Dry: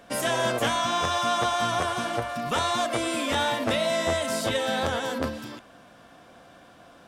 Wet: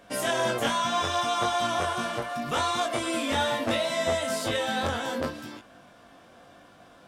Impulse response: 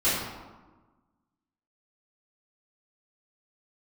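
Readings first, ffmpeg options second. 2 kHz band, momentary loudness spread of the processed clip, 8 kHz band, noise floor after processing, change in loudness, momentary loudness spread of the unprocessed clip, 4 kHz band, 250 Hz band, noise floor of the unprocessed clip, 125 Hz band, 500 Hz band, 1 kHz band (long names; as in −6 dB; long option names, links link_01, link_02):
−1.5 dB, 6 LU, −1.5 dB, −54 dBFS, −1.5 dB, 6 LU, −1.5 dB, −1.5 dB, −52 dBFS, −2.5 dB, −1.5 dB, −1.0 dB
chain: -af "flanger=delay=19.5:depth=2.6:speed=0.72,volume=1.5dB"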